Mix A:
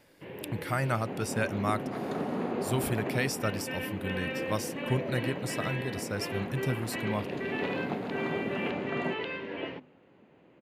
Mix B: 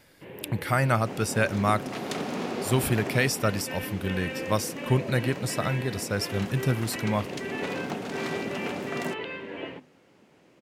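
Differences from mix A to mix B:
speech +6.0 dB
second sound: remove moving average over 16 samples

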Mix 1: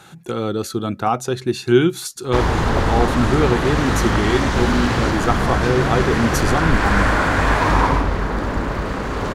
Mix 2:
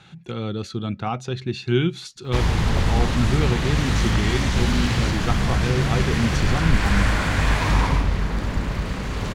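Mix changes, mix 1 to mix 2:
speech: add low-pass filter 3,700 Hz 12 dB per octave
master: add flat-topped bell 660 Hz −8.5 dB 3 octaves

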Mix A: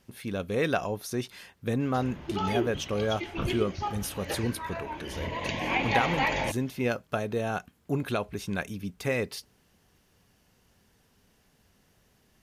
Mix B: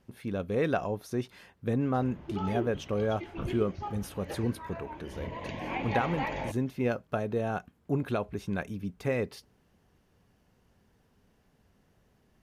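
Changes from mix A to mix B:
background −4.0 dB
master: add high-shelf EQ 2,100 Hz −11 dB

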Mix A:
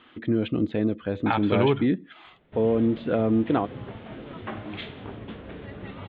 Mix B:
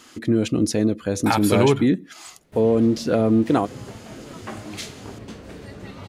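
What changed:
speech +3.5 dB
master: remove elliptic low-pass filter 3,500 Hz, stop band 40 dB

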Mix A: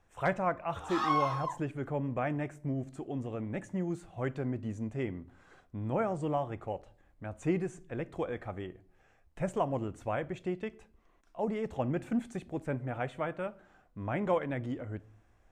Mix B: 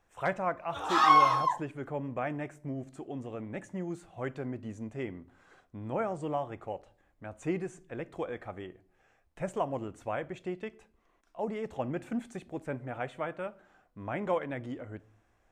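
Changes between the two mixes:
speech: add low-shelf EQ 180 Hz −7.5 dB
background +9.0 dB

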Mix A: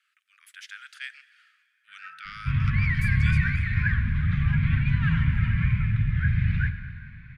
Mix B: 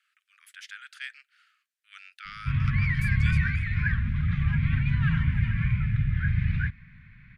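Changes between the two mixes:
first sound: muted
reverb: off

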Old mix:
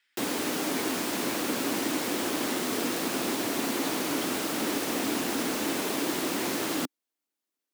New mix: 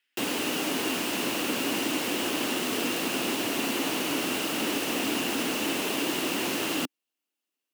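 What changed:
speech −8.0 dB
master: add parametric band 2,800 Hz +10.5 dB 0.29 octaves

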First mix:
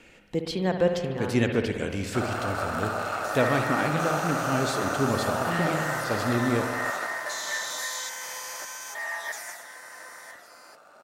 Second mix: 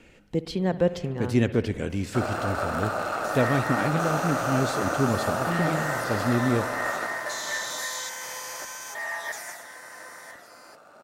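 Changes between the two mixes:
speech: send −11.5 dB
master: add low-shelf EQ 410 Hz +7.5 dB

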